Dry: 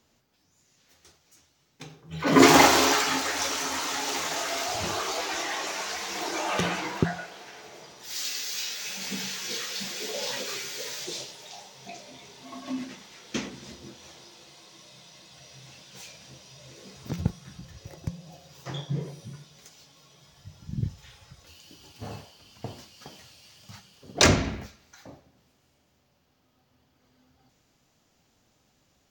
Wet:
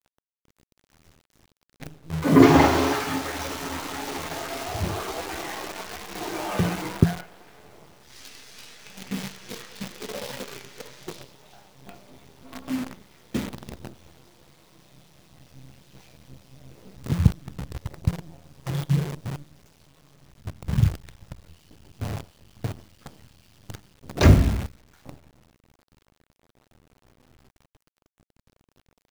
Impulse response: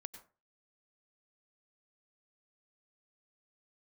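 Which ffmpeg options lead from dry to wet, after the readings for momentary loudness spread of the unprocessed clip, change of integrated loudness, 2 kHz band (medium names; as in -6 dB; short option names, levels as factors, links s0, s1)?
24 LU, +1.0 dB, -4.0 dB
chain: -af "aemphasis=mode=reproduction:type=riaa,acrusher=bits=6:dc=4:mix=0:aa=0.000001,volume=0.794"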